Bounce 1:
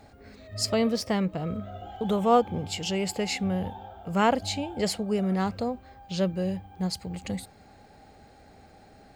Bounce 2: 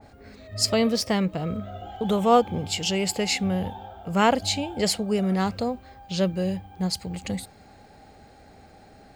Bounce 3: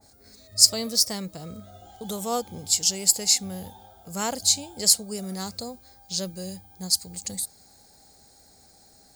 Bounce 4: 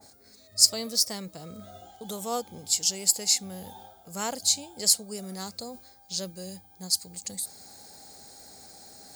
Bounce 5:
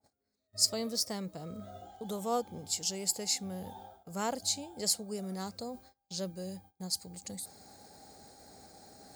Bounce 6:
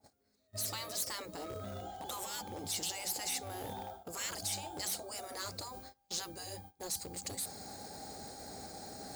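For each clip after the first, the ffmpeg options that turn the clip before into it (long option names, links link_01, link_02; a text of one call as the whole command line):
ffmpeg -i in.wav -af "adynamicequalizer=threshold=0.01:dfrequency=2200:dqfactor=0.7:tfrequency=2200:tqfactor=0.7:attack=5:release=100:ratio=0.375:range=2:mode=boostabove:tftype=highshelf,volume=2.5dB" out.wav
ffmpeg -i in.wav -af "aexciter=amount=10.4:drive=5:freq=4200,volume=-10dB" out.wav
ffmpeg -i in.wav -af "highpass=frequency=170:poles=1,areverse,acompressor=mode=upward:threshold=-35dB:ratio=2.5,areverse,volume=-3dB" out.wav
ffmpeg -i in.wav -af "highshelf=frequency=2200:gain=-10,agate=range=-24dB:threshold=-55dB:ratio=16:detection=peak" out.wav
ffmpeg -i in.wav -filter_complex "[0:a]afftfilt=real='re*lt(hypot(re,im),0.0316)':imag='im*lt(hypot(re,im),0.0316)':win_size=1024:overlap=0.75,asplit=2[link_01][link_02];[link_02]aeval=exprs='(mod(133*val(0)+1,2)-1)/133':channel_layout=same,volume=-7.5dB[link_03];[link_01][link_03]amix=inputs=2:normalize=0,volume=4.5dB" out.wav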